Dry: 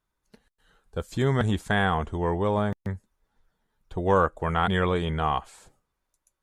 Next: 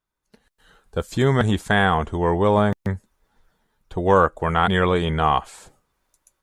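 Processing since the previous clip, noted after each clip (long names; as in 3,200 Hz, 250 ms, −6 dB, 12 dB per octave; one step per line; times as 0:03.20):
automatic gain control gain up to 13.5 dB
low-shelf EQ 130 Hz −3.5 dB
level −3 dB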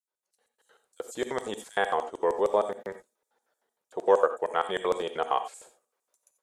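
auto-filter high-pass square 6.5 Hz 480–7,600 Hz
reverb whose tail is shaped and stops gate 110 ms rising, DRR 9.5 dB
level −8.5 dB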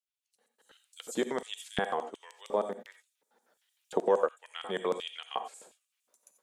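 camcorder AGC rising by 12 dB per second
auto-filter high-pass square 1.4 Hz 200–2,800 Hz
level −6 dB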